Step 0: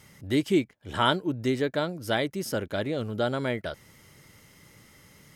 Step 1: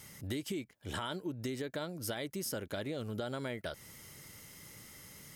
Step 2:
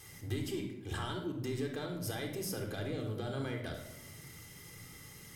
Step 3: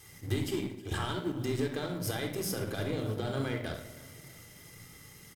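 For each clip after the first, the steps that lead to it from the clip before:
treble shelf 5.4 kHz +10 dB; peak limiter -18 dBFS, peak gain reduction 9.5 dB; compression, threshold -34 dBFS, peak gain reduction 11.5 dB; trim -1.5 dB
saturation -30.5 dBFS, distortion -20 dB; reverberation RT60 0.95 s, pre-delay 3 ms, DRR 3.5 dB; trim -2.5 dB
companding laws mixed up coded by A; feedback delay 315 ms, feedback 53%, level -20 dB; trim +7 dB

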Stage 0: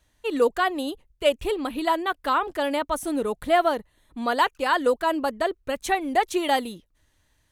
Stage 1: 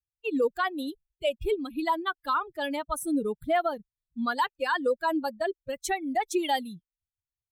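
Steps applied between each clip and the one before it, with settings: expander on every frequency bin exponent 2; peak limiter -20 dBFS, peak gain reduction 9 dB; trim +2.5 dB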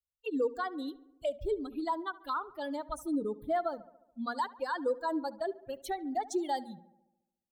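hum notches 60/120/180/240 Hz; touch-sensitive phaser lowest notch 290 Hz, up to 2.6 kHz, full sweep at -27.5 dBFS; filtered feedback delay 71 ms, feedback 63%, low-pass 2.2 kHz, level -18.5 dB; trim -4.5 dB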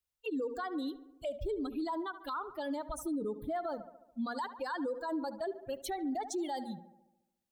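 peak limiter -33.5 dBFS, peak gain reduction 11.5 dB; trim +4 dB

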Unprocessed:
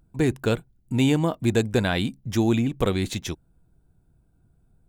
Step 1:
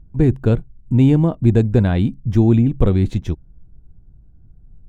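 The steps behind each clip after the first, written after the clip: tilt EQ -4 dB/octave; trim -1 dB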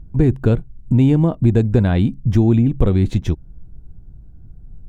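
compression 2:1, threshold -22 dBFS, peak gain reduction 8 dB; trim +6.5 dB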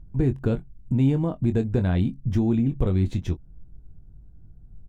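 doubling 22 ms -9 dB; trim -8 dB

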